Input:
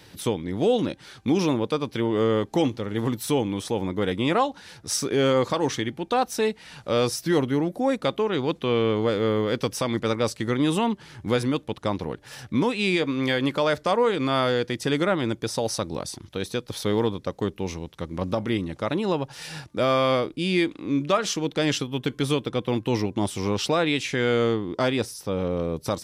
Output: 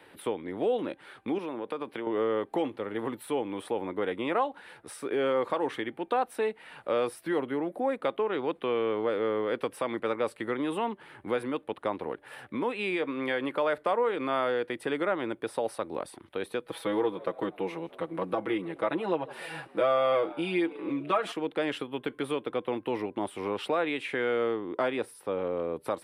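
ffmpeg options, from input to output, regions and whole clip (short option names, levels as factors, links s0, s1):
-filter_complex "[0:a]asettb=1/sr,asplit=3[s0][s1][s2];[s0]atrim=end=1.384[s3];[s1]atrim=start=1.38:end=2.07,asetpts=PTS-STARTPTS,afade=t=in:d=0.004:c=qsin,afade=t=out:st=0.686:d=0.004:c=qsin,highpass=120,acompressor=threshold=0.0501:ratio=10:attack=3.2:release=140:knee=1:detection=peak[s4];[s2]atrim=start=2.066[s5];[s3][s4]acrossfade=d=0.004:c1=hsin:c2=qsin[s6];[s6][s5]acrossfade=d=0.004:c1=qsin:c2=hsin,asettb=1/sr,asplit=3[s7][s8][s9];[s7]atrim=end=16.654[s10];[s8]atrim=start=16.65:end=21.32,asetpts=PTS-STARTPTS,afade=t=in:d=0.004:c=qsin,afade=t=out:st=4.666:d=0.004:c=qsin,aecho=1:1:6.1:0.91,atrim=end_sample=205947,asplit=5[s11][s12][s13][s14][s15];[s12]adelay=159,afreqshift=89,volume=0.0631[s16];[s13]adelay=318,afreqshift=178,volume=0.0355[s17];[s14]adelay=477,afreqshift=267,volume=0.0197[s18];[s15]adelay=636,afreqshift=356,volume=0.0111[s19];[s11][s16][s17][s18][s19]amix=inputs=5:normalize=0,atrim=end_sample=205947[s20];[s9]atrim=start=21.316[s21];[s10][s20]acrossfade=d=0.004:c1=hsin:c2=qsin[s22];[s22][s21]acrossfade=d=0.004:c1=qsin:c2=hsin,highshelf=f=7500:t=q:w=3:g=8.5,acompressor=threshold=0.0562:ratio=2,acrossover=split=290 3100:gain=0.126 1 0.0708[s23][s24][s25];[s23][s24][s25]amix=inputs=3:normalize=0"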